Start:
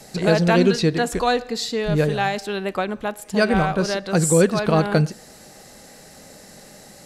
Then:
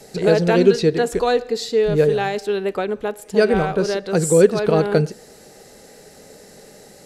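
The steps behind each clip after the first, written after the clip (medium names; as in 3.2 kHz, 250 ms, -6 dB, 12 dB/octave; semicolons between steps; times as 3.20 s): peaking EQ 430 Hz +11 dB 0.43 oct; band-stop 1.1 kHz, Q 16; trim -2 dB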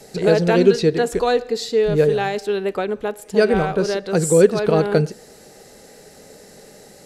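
no audible change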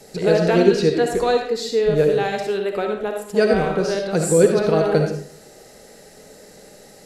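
reverberation RT60 0.50 s, pre-delay 25 ms, DRR 3 dB; trim -2 dB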